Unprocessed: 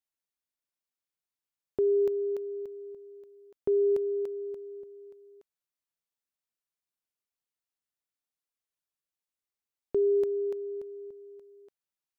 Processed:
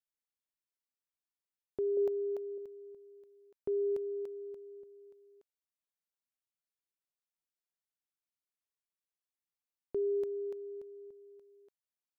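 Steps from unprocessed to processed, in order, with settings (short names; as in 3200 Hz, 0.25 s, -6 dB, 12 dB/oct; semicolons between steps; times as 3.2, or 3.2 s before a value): 1.97–2.58 bell 680 Hz +11 dB 0.89 oct; gain -7.5 dB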